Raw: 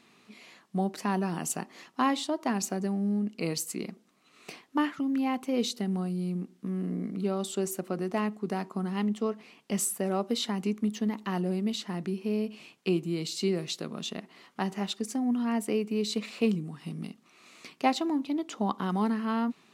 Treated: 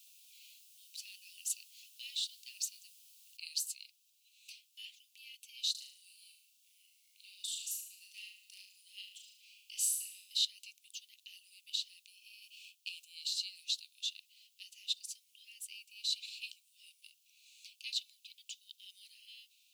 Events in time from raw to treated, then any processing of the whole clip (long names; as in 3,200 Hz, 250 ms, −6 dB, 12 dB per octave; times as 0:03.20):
0:03.37: noise floor change −57 dB −69 dB
0:05.71–0:10.45: flutter between parallel walls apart 6.3 metres, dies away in 0.61 s
0:12.42–0:13.05: leveller curve on the samples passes 1
whole clip: Butterworth high-pass 2,600 Hz 72 dB per octave; dynamic equaliser 4,100 Hz, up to +6 dB, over −51 dBFS, Q 2.4; level −4 dB